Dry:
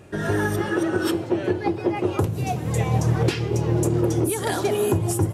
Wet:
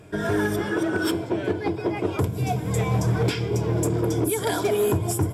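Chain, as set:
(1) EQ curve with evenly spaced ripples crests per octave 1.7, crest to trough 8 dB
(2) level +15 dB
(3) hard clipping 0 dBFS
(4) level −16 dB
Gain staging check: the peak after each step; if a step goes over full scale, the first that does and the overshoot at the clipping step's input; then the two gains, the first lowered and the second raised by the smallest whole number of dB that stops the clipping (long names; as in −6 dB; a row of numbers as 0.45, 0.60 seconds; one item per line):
−7.5, +7.5, 0.0, −16.0 dBFS
step 2, 7.5 dB
step 2 +7 dB, step 4 −8 dB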